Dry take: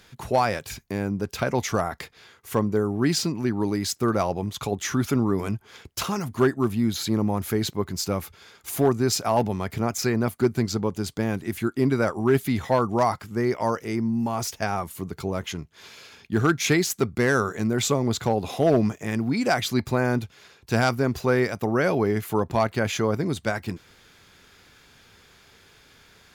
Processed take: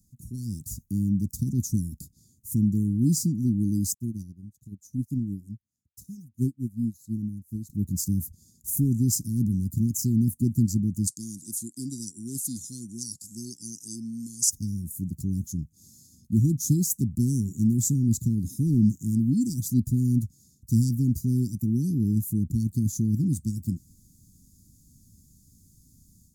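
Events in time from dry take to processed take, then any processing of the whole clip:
0:03.94–0:07.70: expander for the loud parts 2.5 to 1, over −37 dBFS
0:11.07–0:14.50: meter weighting curve ITU-R 468
whole clip: inverse Chebyshev band-stop filter 680–2,800 Hz, stop band 60 dB; flat-topped bell 870 Hz −15.5 dB 2.3 octaves; automatic gain control gain up to 9 dB; level −4.5 dB

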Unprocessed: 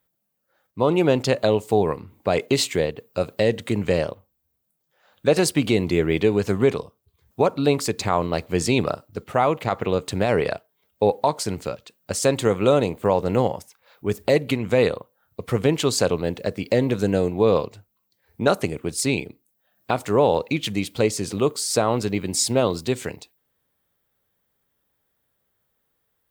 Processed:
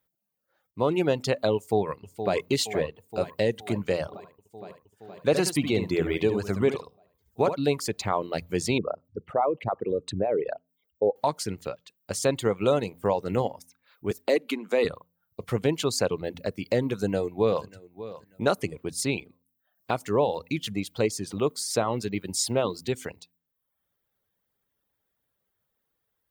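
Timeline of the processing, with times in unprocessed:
0:01.56–0:02.36: delay throw 470 ms, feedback 75%, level −9 dB
0:04.06–0:07.57: single-tap delay 72 ms −5 dB
0:08.78–0:11.16: spectral envelope exaggerated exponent 2
0:14.11–0:14.85: Butterworth high-pass 220 Hz
0:16.92–0:17.65: delay throw 590 ms, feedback 25%, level −15 dB
0:20.24–0:20.85: parametric band 1,700 Hz −2.5 dB 2.1 octaves
whole clip: notch filter 7,800 Hz, Q 20; hum removal 85.84 Hz, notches 3; reverb reduction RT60 0.73 s; level −4.5 dB

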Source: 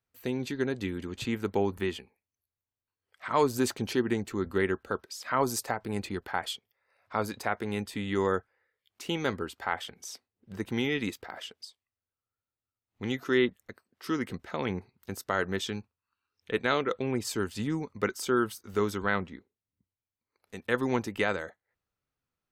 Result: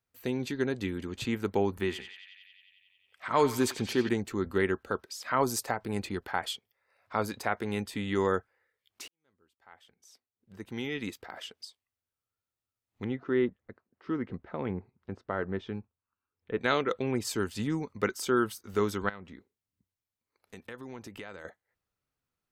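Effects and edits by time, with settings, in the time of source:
0:01.76–0:04.09: feedback echo with a band-pass in the loop 90 ms, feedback 81%, band-pass 2,700 Hz, level −7.5 dB
0:09.08–0:11.58: fade in quadratic
0:13.04–0:16.61: head-to-tape spacing loss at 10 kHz 44 dB
0:19.09–0:21.45: downward compressor 4 to 1, threshold −42 dBFS

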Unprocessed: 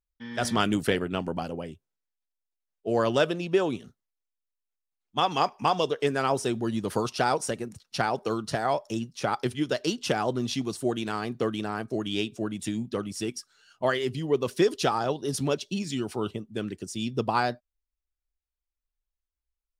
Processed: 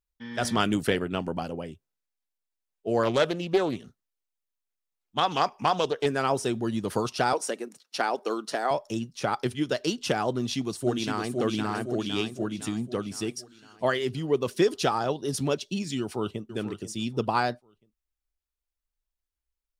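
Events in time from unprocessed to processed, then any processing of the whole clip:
0:03.03–0:06.06: highs frequency-modulated by the lows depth 0.24 ms
0:07.33–0:08.71: high-pass filter 260 Hz 24 dB per octave
0:10.32–0:11.34: delay throw 510 ms, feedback 55%, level −4 dB
0:16.00–0:16.47: delay throw 490 ms, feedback 30%, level −11.5 dB

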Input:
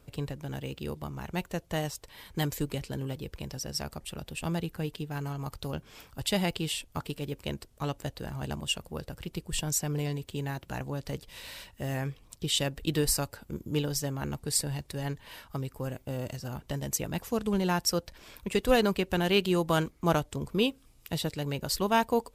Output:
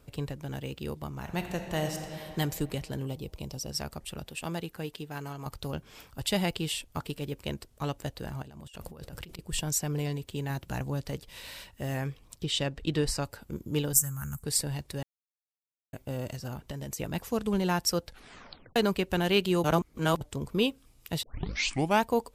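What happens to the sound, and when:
0:01.13–0:02.31: thrown reverb, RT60 2.9 s, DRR 4 dB
0:03.06–0:03.71: parametric band 1,700 Hz −13.5 dB 0.53 octaves
0:04.28–0:05.46: low-shelf EQ 150 Hz −11.5 dB
0:08.42–0:09.39: compressor whose output falls as the input rises −46 dBFS
0:10.50–0:11.03: bass and treble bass +4 dB, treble +3 dB
0:12.44–0:13.25: high-frequency loss of the air 67 metres
0:13.93–0:14.43: drawn EQ curve 180 Hz 0 dB, 320 Hz −22 dB, 740 Hz −17 dB, 1,400 Hz 0 dB, 2,100 Hz −10 dB, 4,100 Hz −19 dB, 7,500 Hz +14 dB
0:15.03–0:15.93: silence
0:16.53–0:16.98: downward compressor, threshold −33 dBFS
0:18.05: tape stop 0.71 s
0:19.64–0:20.21: reverse
0:21.23: tape start 0.78 s

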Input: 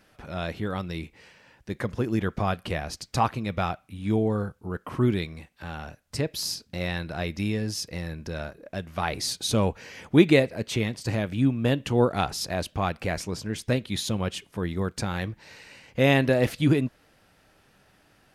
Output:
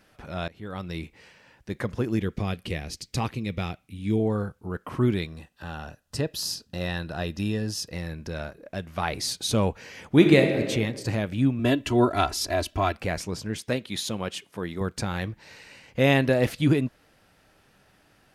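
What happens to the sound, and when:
0:00.48–0:00.95: fade in, from −23.5 dB
0:02.18–0:04.20: flat-topped bell 970 Hz −9 dB
0:05.26–0:07.93: Butterworth band-reject 2,200 Hz, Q 5.8
0:10.11–0:10.64: thrown reverb, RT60 1.6 s, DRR 4 dB
0:11.59–0:12.96: comb filter 3 ms, depth 93%
0:13.58–0:14.81: high-pass filter 230 Hz 6 dB per octave

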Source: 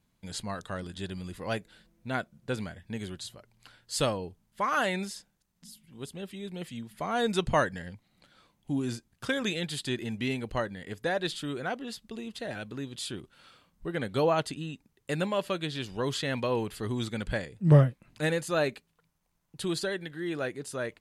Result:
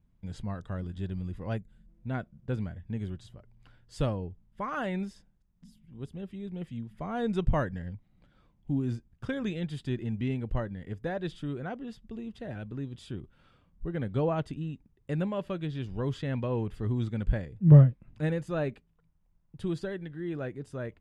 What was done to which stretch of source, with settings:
0:01.57–0:01.89: gain on a spectral selection 240–6,100 Hz −10 dB
whole clip: RIAA equalisation playback; notch filter 4,200 Hz, Q 9.2; level −6.5 dB

